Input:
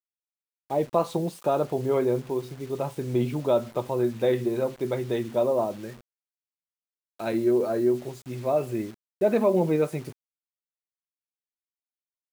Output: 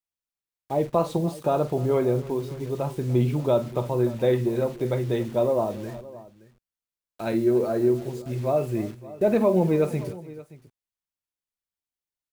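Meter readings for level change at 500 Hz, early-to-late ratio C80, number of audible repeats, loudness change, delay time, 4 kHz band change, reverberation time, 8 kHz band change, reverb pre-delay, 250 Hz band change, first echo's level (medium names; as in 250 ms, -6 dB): +1.0 dB, no reverb, 3, +1.5 dB, 48 ms, +0.5 dB, no reverb, no reading, no reverb, +2.0 dB, -14.5 dB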